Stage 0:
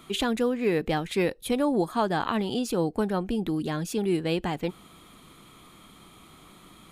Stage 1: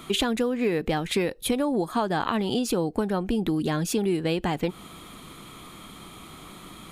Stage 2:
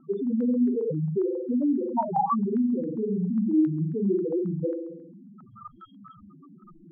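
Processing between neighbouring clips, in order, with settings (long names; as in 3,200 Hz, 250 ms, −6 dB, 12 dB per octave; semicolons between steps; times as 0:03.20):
downward compressor, threshold −29 dBFS, peak gain reduction 9.5 dB; level +7.5 dB
flutter between parallel walls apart 7.7 metres, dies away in 1.2 s; spectral peaks only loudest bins 2; low-pass on a step sequencer 7.4 Hz 790–1,700 Hz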